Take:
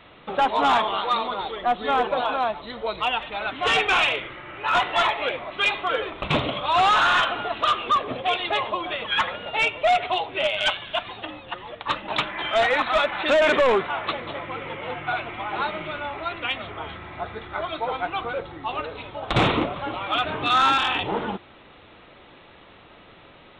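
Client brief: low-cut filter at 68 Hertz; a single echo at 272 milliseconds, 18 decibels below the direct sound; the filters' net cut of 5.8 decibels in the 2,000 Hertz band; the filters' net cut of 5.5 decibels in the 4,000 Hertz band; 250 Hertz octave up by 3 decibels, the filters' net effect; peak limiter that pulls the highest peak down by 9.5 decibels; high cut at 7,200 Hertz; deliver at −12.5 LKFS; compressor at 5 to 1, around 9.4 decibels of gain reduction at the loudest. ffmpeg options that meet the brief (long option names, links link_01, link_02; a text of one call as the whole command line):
ffmpeg -i in.wav -af "highpass=68,lowpass=7200,equalizer=frequency=250:width_type=o:gain=4,equalizer=frequency=2000:width_type=o:gain=-7,equalizer=frequency=4000:width_type=o:gain=-4,acompressor=threshold=-27dB:ratio=5,alimiter=level_in=1dB:limit=-24dB:level=0:latency=1,volume=-1dB,aecho=1:1:272:0.126,volume=21dB" out.wav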